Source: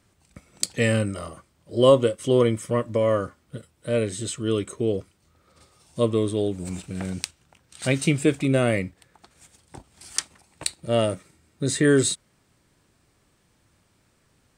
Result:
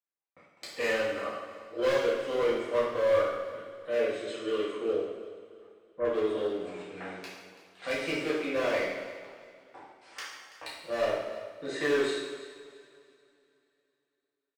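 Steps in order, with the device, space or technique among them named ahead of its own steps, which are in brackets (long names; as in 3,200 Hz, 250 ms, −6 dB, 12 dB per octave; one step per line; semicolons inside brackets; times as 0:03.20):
walkie-talkie (band-pass filter 560–2,300 Hz; hard clipping −25.5 dBFS, distortion −6 dB; noise gate −59 dBFS, range −32 dB)
0:04.96–0:06.05: Butterworth low-pass 2,000 Hz
repeating echo 334 ms, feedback 29%, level −16 dB
coupled-rooms reverb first 0.95 s, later 3.1 s, from −18 dB, DRR −8.5 dB
level −7 dB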